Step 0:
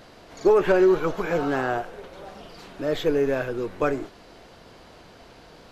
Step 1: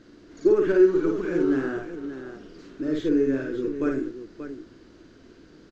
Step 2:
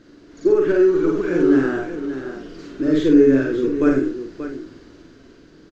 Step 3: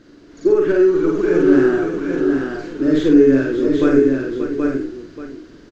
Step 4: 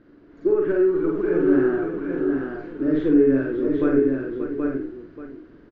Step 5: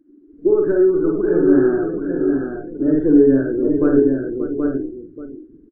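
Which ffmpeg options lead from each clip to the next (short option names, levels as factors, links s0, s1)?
-af "firequalizer=gain_entry='entry(180,0);entry(310,11);entry(500,-5);entry(750,-14);entry(1500,-1);entry(2300,-7);entry(3500,-6);entry(6700,-2);entry(10000,-20)':delay=0.05:min_phase=1,aecho=1:1:52|582:0.668|0.316,volume=0.562"
-filter_complex "[0:a]dynaudnorm=f=210:g=11:m=1.88,asplit=2[s0][s1];[s1]adelay=45,volume=0.501[s2];[s0][s2]amix=inputs=2:normalize=0,volume=1.26"
-af "aecho=1:1:779:0.596,volume=1.19"
-af "lowpass=1900,volume=0.531"
-af "tiltshelf=f=1400:g=3.5,afftdn=nr=25:nf=-37,volume=1.19"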